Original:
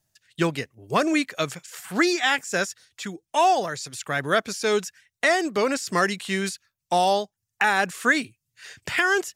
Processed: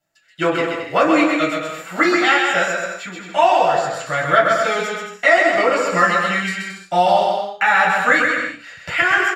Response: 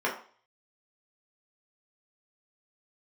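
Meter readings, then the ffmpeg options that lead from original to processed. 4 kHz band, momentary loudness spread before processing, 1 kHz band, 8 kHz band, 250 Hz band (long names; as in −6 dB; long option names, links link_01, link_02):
+3.5 dB, 14 LU, +8.0 dB, −1.0 dB, +5.0 dB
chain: -filter_complex "[0:a]asubboost=boost=11.5:cutoff=88,aecho=1:1:130|221|284.7|329.3|360.5:0.631|0.398|0.251|0.158|0.1[link_01];[1:a]atrim=start_sample=2205,asetrate=57330,aresample=44100[link_02];[link_01][link_02]afir=irnorm=-1:irlink=0,volume=-2.5dB"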